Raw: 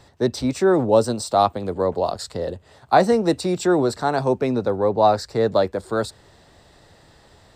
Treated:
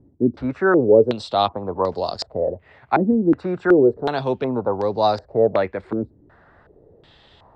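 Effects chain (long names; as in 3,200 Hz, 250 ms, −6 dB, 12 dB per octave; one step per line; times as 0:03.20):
low-pass on a step sequencer 2.7 Hz 290–5,000 Hz
level −2.5 dB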